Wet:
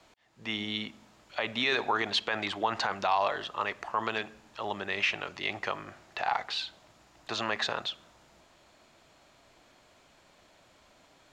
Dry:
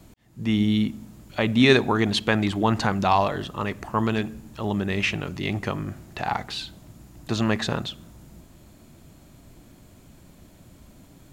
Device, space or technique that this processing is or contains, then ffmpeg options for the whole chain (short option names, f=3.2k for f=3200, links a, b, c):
DJ mixer with the lows and highs turned down: -filter_complex "[0:a]acrossover=split=500 6300:gain=0.0891 1 0.0891[a][b][c];[a][b][c]amix=inputs=3:normalize=0,alimiter=limit=-16.5dB:level=0:latency=1:release=38"